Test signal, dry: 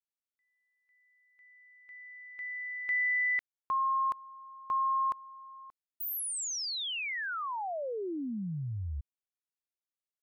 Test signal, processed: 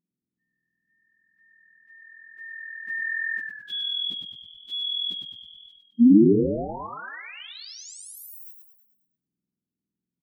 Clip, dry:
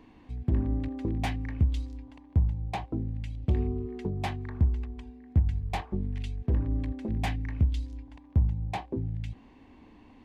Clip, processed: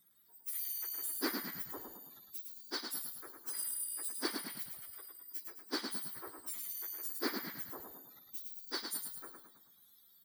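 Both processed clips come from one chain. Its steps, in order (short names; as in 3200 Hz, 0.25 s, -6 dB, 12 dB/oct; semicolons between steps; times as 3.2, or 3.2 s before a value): spectrum mirrored in octaves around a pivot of 1900 Hz; resonant low shelf 450 Hz +10 dB, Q 1.5; spectral noise reduction 16 dB; frequency-shifting echo 0.107 s, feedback 50%, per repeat -41 Hz, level -5.5 dB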